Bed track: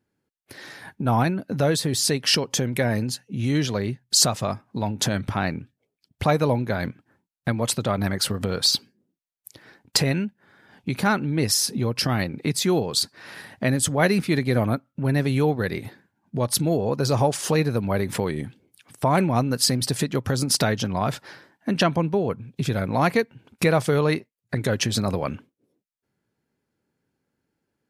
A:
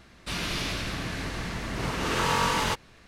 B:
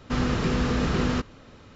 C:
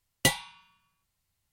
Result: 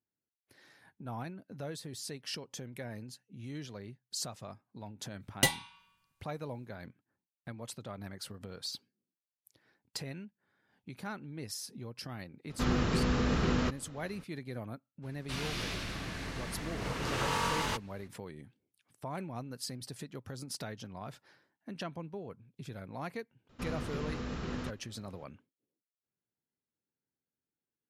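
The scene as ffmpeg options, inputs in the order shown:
-filter_complex "[2:a]asplit=2[a][b];[0:a]volume=-20dB[c];[3:a]atrim=end=1.52,asetpts=PTS-STARTPTS,volume=-3dB,afade=t=in:d=0.05,afade=t=out:st=1.47:d=0.05,adelay=5180[d];[a]atrim=end=1.75,asetpts=PTS-STARTPTS,volume=-5dB,afade=t=in:d=0.004:c=hsin,afade=t=out:st=1.746:d=0.004:c=hsin,adelay=12490[e];[1:a]atrim=end=3.07,asetpts=PTS-STARTPTS,volume=-7dB,afade=t=in:d=0.02,afade=t=out:st=3.05:d=0.02,adelay=15020[f];[b]atrim=end=1.75,asetpts=PTS-STARTPTS,volume=-14dB,afade=t=in:d=0.004:c=hsin,afade=t=out:st=1.746:d=0.004:c=hsin,adelay=23490[g];[c][d][e][f][g]amix=inputs=5:normalize=0"

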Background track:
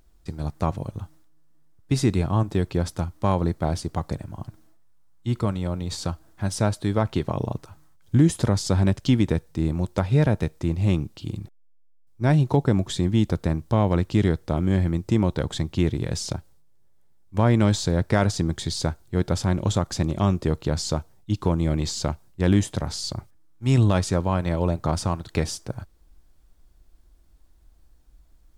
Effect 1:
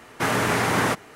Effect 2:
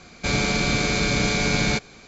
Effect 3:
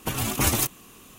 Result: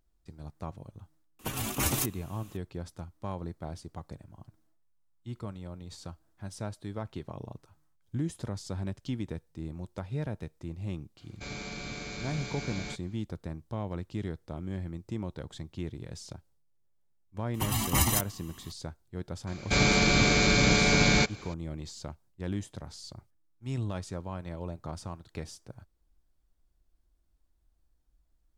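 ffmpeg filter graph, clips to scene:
-filter_complex "[3:a]asplit=2[a][b];[2:a]asplit=2[c][d];[0:a]volume=-15dB[e];[b]aecho=1:1:1:0.75[f];[a]atrim=end=1.18,asetpts=PTS-STARTPTS,volume=-6.5dB,afade=t=in:d=0.004:c=hsin,afade=t=out:st=1.176:d=0.004:c=hsin,adelay=1390[g];[c]atrim=end=2.07,asetpts=PTS-STARTPTS,volume=-17.5dB,afade=t=in:d=0.004:c=hsin,afade=t=out:st=2.066:d=0.004:c=hsin,adelay=11170[h];[f]atrim=end=1.18,asetpts=PTS-STARTPTS,volume=-5.5dB,afade=t=in:d=0.004:c=hsin,afade=t=out:st=1.176:d=0.004:c=hsin,adelay=17540[i];[d]atrim=end=2.07,asetpts=PTS-STARTPTS,volume=-1dB,afade=t=in:d=0.004:c=hsin,afade=t=out:st=2.066:d=0.004:c=hsin,adelay=19470[j];[e][g][h][i][j]amix=inputs=5:normalize=0"

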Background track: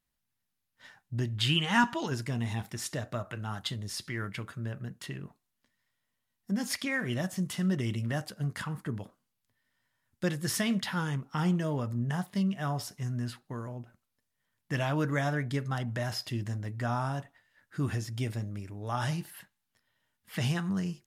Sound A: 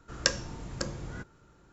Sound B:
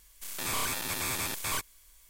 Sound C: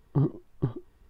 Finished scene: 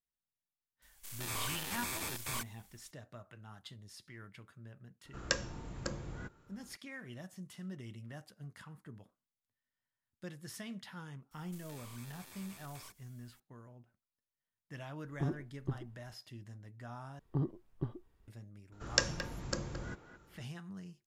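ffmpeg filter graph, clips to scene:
-filter_complex "[2:a]asplit=2[a][b];[1:a]asplit=2[c][d];[3:a]asplit=2[e][f];[0:a]volume=-16dB[g];[a]acontrast=45[h];[c]equalizer=f=5.6k:w=1.6:g=-4.5[i];[b]acompressor=threshold=-41dB:ratio=6:attack=3.2:release=140:knee=1:detection=peak[j];[d]asplit=2[k][l];[l]adelay=220,highpass=300,lowpass=3.4k,asoftclip=type=hard:threshold=-13.5dB,volume=-9dB[m];[k][m]amix=inputs=2:normalize=0[n];[g]asplit=2[o][p];[o]atrim=end=17.194[q];[f]atrim=end=1.09,asetpts=PTS-STARTPTS,volume=-9.5dB[r];[p]atrim=start=18.276[s];[h]atrim=end=2.09,asetpts=PTS-STARTPTS,volume=-13dB,afade=t=in:d=0.004:c=hsin,afade=t=out:st=2.086:d=0.004:c=hsin,adelay=820[t];[i]atrim=end=1.72,asetpts=PTS-STARTPTS,volume=-4.5dB,afade=t=in:d=0.004:c=hsin,afade=t=out:st=1.716:d=0.004:c=hsin,adelay=222705S[u];[j]atrim=end=2.09,asetpts=PTS-STARTPTS,volume=-10dB,afade=t=in:d=0.004:c=hsin,afade=t=out:st=2.086:d=0.004:c=hsin,adelay=11310[v];[e]atrim=end=1.09,asetpts=PTS-STARTPTS,volume=-10dB,afade=t=in:d=0.004:c=hsin,afade=t=out:st=1.086:d=0.004:c=hsin,adelay=15050[w];[n]atrim=end=1.72,asetpts=PTS-STARTPTS,volume=-3dB,afade=t=in:d=0.004:c=hsin,afade=t=out:st=1.716:d=0.004:c=hsin,adelay=18720[x];[q][r]acrossfade=d=0.004:c1=hsin:c2=hsin[y];[y][s]acrossfade=d=0.004:c1=hsin:c2=hsin[z];[z][t][u][v][w][x]amix=inputs=6:normalize=0"

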